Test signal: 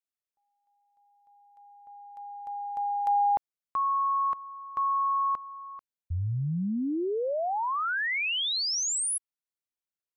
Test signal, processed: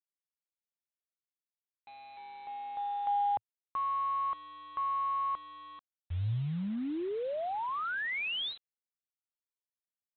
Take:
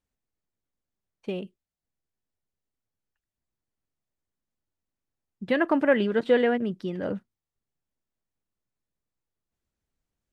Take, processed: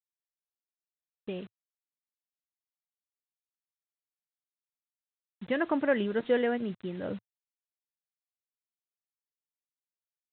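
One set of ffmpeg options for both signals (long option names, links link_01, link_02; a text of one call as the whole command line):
ffmpeg -i in.wav -af "aresample=8000,acrusher=bits=7:mix=0:aa=0.000001,aresample=44100,adynamicequalizer=threshold=0.00282:dfrequency=110:dqfactor=2.7:tfrequency=110:tqfactor=2.7:attack=5:release=100:ratio=0.375:range=2:mode=boostabove:tftype=bell,volume=-5.5dB" out.wav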